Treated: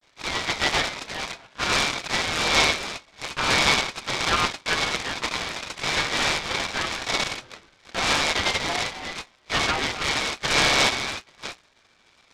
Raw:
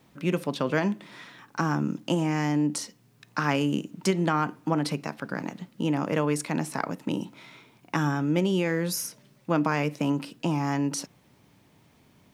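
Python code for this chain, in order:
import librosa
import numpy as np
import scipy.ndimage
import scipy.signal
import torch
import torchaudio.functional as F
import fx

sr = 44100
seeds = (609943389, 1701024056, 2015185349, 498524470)

p1 = fx.reverse_delay(x, sr, ms=328, wet_db=-11)
p2 = fx.env_lowpass(p1, sr, base_hz=1100.0, full_db=-24.0)
p3 = fx.highpass(p2, sr, hz=120.0, slope=6)
p4 = fx.hum_notches(p3, sr, base_hz=60, count=9)
p5 = p4 + 0.73 * np.pad(p4, (int(7.3 * sr / 1000.0), 0))[:len(p4)]
p6 = fx.schmitt(p5, sr, flips_db=-34.0)
p7 = p5 + (p6 * 10.0 ** (-8.5 / 20.0))
p8 = fx.vibrato(p7, sr, rate_hz=0.52, depth_cents=73.0)
p9 = fx.chorus_voices(p8, sr, voices=2, hz=0.19, base_ms=18, depth_ms=3.9, mix_pct=60)
p10 = fx.freq_invert(p9, sr, carrier_hz=2500)
p11 = fx.noise_mod_delay(p10, sr, seeds[0], noise_hz=1300.0, depth_ms=0.094)
y = p11 * 10.0 ** (2.0 / 20.0)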